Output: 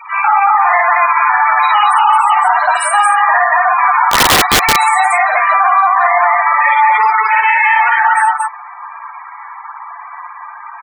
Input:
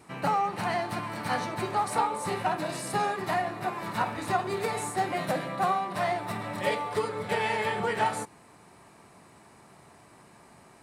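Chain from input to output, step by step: chopper 8.2 Hz, depth 65%, duty 80%; high shelf 4700 Hz -5.5 dB; 1.71–2.21 overdrive pedal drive 26 dB, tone 5400 Hz, clips at -14.5 dBFS; vocal rider 2 s; 6.75–7.37 comb 4.7 ms, depth 68%; compressor 16:1, threshold -29 dBFS, peak gain reduction 13 dB; HPF 930 Hz 24 dB/oct; loudest bins only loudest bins 16; loudspeakers at several distances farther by 18 m -1 dB, 78 m -1 dB; 4.1–4.76 wrapped overs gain 32 dB; maximiser +30 dB; gain -1 dB

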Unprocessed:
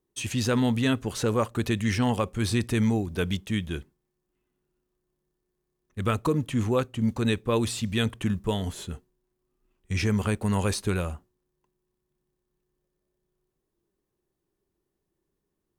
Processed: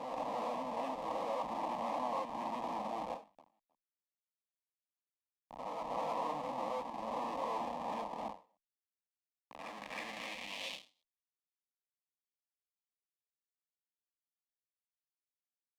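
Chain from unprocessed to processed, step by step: spectral swells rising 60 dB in 1.12 s; tone controls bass -12 dB, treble -10 dB; on a send at -6 dB: reverb RT60 0.15 s, pre-delay 3 ms; on the sum: Schmitt trigger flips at -26.5 dBFS; reverse echo 0.311 s -6.5 dB; vibrato 1.7 Hz 50 cents; fixed phaser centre 390 Hz, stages 6; compressor, threshold -32 dBFS, peak gain reduction 5 dB; band-pass sweep 970 Hz -> 3600 Hz, 9.29–10.96; ending taper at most 190 dB/s; gain +8.5 dB

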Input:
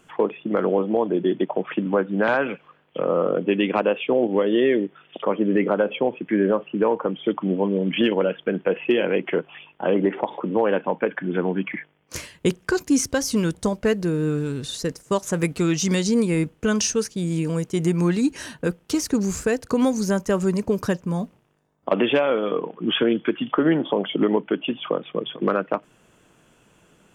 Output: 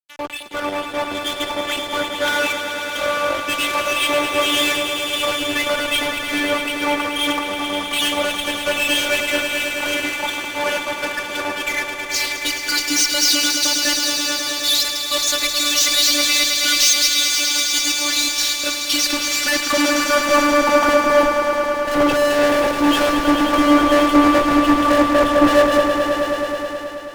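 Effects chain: HPF 200 Hz; robotiser 292 Hz; band-pass sweep 4400 Hz -> 550 Hz, 18.52–21.26; fuzz box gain 52 dB, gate -56 dBFS; on a send: swelling echo 0.107 s, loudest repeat 5, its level -8 dB; on the sum: three-band expander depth 70%; gain -3.5 dB

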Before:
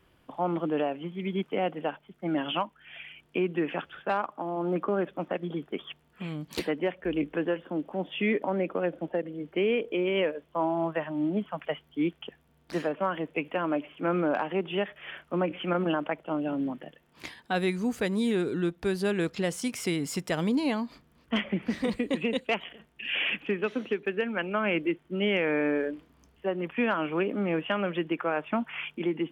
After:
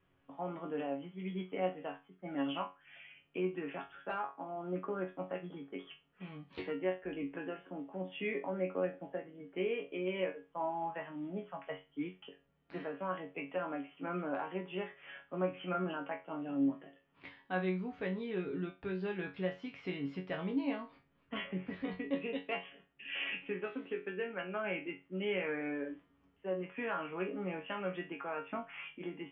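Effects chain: inverse Chebyshev low-pass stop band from 9200 Hz, stop band 60 dB; resonator bank F#2 fifth, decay 0.26 s; gain +1.5 dB

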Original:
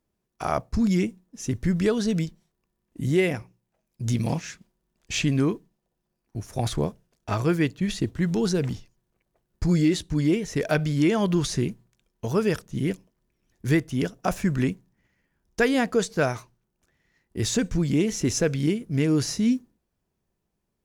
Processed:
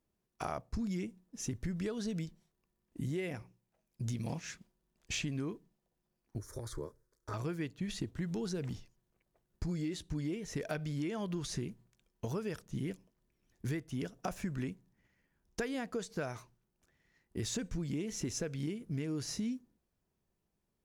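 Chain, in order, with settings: compressor, threshold -30 dBFS, peak gain reduction 13 dB; 6.38–7.34 fixed phaser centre 730 Hz, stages 6; gain -4.5 dB

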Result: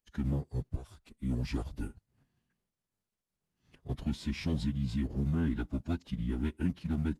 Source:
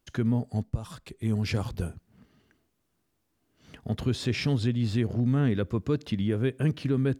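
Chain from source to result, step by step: G.711 law mismatch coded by A; low shelf 77 Hz +7.5 dB; formant-preserving pitch shift -9.5 st; gain -6.5 dB

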